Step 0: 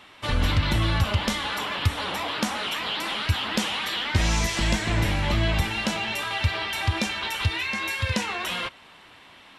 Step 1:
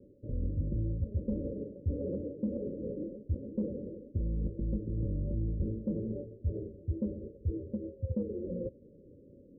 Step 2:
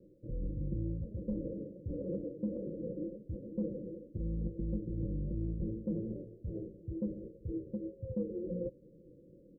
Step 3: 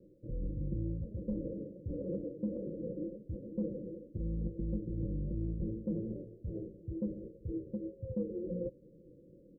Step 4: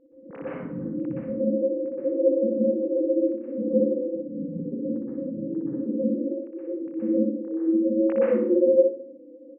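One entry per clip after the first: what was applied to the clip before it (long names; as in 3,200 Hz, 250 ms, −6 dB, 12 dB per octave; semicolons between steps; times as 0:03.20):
Chebyshev low-pass filter 570 Hz, order 10; reversed playback; downward compressor 6 to 1, threshold −35 dBFS, peak gain reduction 17.5 dB; reversed playback; level +4.5 dB
comb filter 6 ms, depth 66%; level −3.5 dB
no processing that can be heard
three sine waves on the formant tracks; repeating echo 61 ms, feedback 27%, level −3.5 dB; dense smooth reverb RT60 0.53 s, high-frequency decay 0.85×, pre-delay 110 ms, DRR −7.5 dB; level +2 dB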